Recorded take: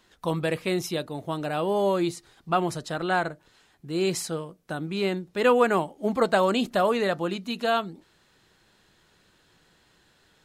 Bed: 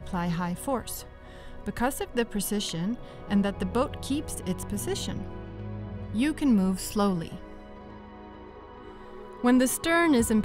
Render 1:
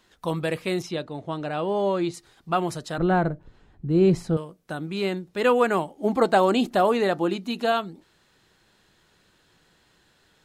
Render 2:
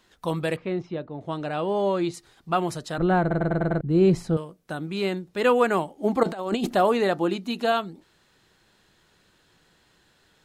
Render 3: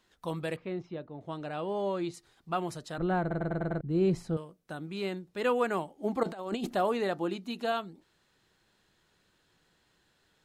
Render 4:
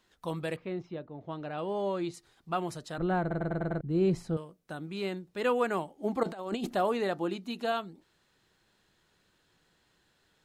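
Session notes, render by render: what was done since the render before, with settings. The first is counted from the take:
0:00.82–0:02.14: high-frequency loss of the air 83 metres; 0:02.98–0:04.37: spectral tilt −4.5 dB per octave; 0:05.97–0:07.72: hollow resonant body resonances 320/780 Hz, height 7 dB, ringing for 20 ms
0:00.56–0:01.21: head-to-tape spacing loss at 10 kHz 37 dB; 0:03.21: stutter in place 0.10 s, 6 plays; 0:06.23–0:06.74: compressor whose output falls as the input rises −25 dBFS, ratio −0.5
level −8 dB
0:00.99–0:01.58: high-frequency loss of the air 120 metres

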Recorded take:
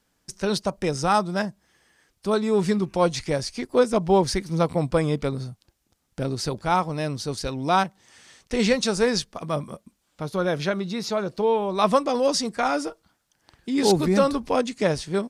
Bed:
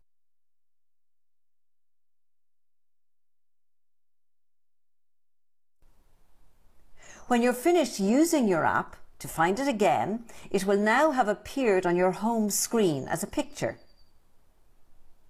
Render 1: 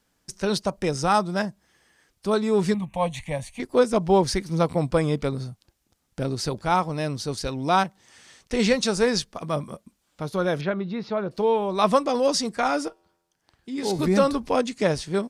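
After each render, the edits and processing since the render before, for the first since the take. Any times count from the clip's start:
0:02.74–0:03.60: phaser with its sweep stopped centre 1,400 Hz, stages 6
0:10.61–0:11.31: high-frequency loss of the air 330 metres
0:12.88–0:13.99: tuned comb filter 86 Hz, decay 1.2 s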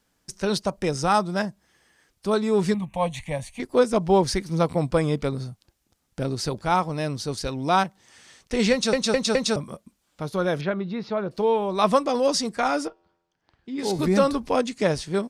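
0:08.72: stutter in place 0.21 s, 4 plays
0:12.87–0:13.79: high-frequency loss of the air 140 metres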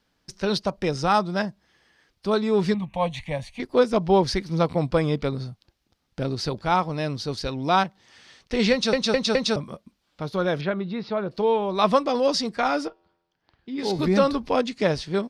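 high shelf with overshoot 6,000 Hz −8.5 dB, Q 1.5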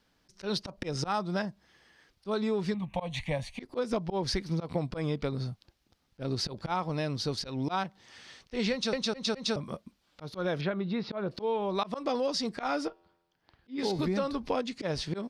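volume swells 174 ms
downward compressor 6 to 1, threshold −27 dBFS, peak gain reduction 12.5 dB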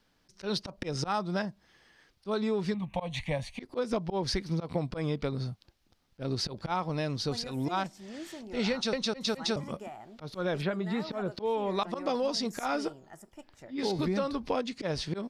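mix in bed −20.5 dB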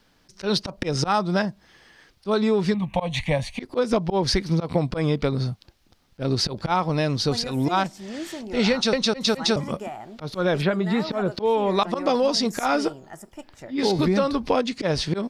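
level +9 dB

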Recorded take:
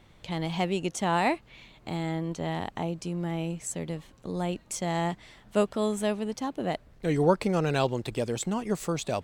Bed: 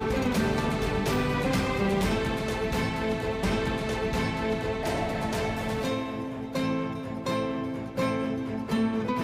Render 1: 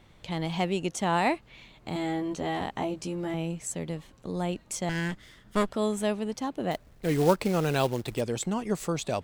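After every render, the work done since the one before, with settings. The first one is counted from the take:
0:01.94–0:03.34: double-tracking delay 15 ms −2.5 dB
0:04.89–0:05.69: lower of the sound and its delayed copy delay 0.6 ms
0:06.71–0:08.21: floating-point word with a short mantissa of 2 bits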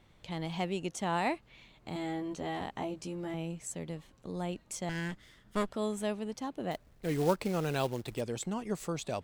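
level −6 dB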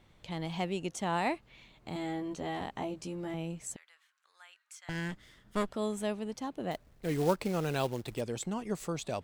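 0:03.76–0:04.89: four-pole ladder high-pass 1,300 Hz, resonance 55%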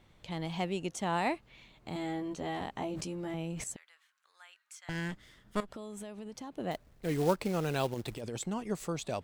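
0:02.89–0:03.64: level that may fall only so fast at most 24 dB per second
0:05.60–0:06.55: downward compressor 16 to 1, threshold −39 dBFS
0:07.94–0:08.37: compressor whose output falls as the input rises −38 dBFS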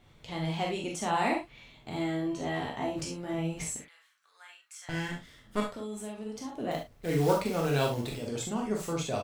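double-tracking delay 42 ms −9.5 dB
reverb whose tail is shaped and stops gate 90 ms flat, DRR −1 dB

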